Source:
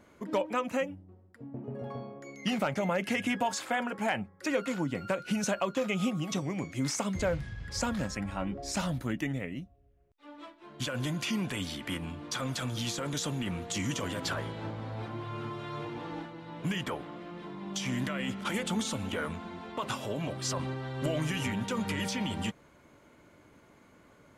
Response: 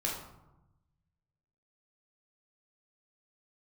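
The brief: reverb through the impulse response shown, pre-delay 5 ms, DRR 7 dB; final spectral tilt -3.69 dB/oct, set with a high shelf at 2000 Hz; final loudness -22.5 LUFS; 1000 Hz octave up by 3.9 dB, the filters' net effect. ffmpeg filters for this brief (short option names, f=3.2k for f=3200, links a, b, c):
-filter_complex "[0:a]equalizer=f=1k:t=o:g=3.5,highshelf=f=2k:g=6,asplit=2[a][b];[1:a]atrim=start_sample=2205,adelay=5[c];[b][c]afir=irnorm=-1:irlink=0,volume=-12dB[d];[a][d]amix=inputs=2:normalize=0,volume=8dB"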